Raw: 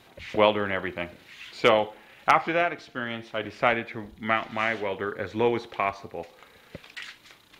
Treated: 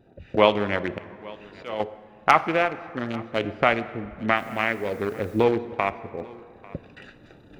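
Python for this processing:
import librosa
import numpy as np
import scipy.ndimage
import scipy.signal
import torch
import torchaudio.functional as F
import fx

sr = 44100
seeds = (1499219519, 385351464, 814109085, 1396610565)

y = fx.wiener(x, sr, points=41)
y = fx.recorder_agc(y, sr, target_db=-12.5, rise_db_per_s=7.2, max_gain_db=30)
y = fx.auto_swell(y, sr, attack_ms=475.0, at=(0.69, 1.8))
y = y + 10.0 ** (-22.5 / 20.0) * np.pad(y, (int(846 * sr / 1000.0), 0))[:len(y)]
y = fx.rev_plate(y, sr, seeds[0], rt60_s=2.5, hf_ratio=0.55, predelay_ms=0, drr_db=14.0)
y = fx.quant_dither(y, sr, seeds[1], bits=10, dither='triangular', at=(4.36, 5.43), fade=0.02)
y = F.gain(torch.from_numpy(y), 3.0).numpy()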